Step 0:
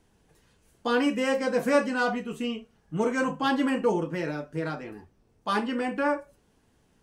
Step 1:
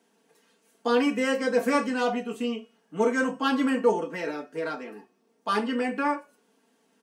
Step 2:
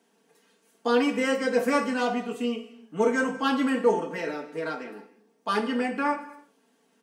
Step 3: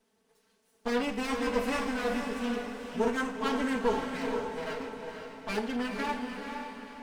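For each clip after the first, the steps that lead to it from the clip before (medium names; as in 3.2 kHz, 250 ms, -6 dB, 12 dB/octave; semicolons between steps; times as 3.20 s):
high-pass 230 Hz 24 dB/octave; comb 4.4 ms, depth 57%; de-hum 363.4 Hz, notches 27
reverberation, pre-delay 3 ms, DRR 10.5 dB
comb filter that takes the minimum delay 4.6 ms; echo that smears into a reverb 479 ms, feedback 46%, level -5 dB; trim -5 dB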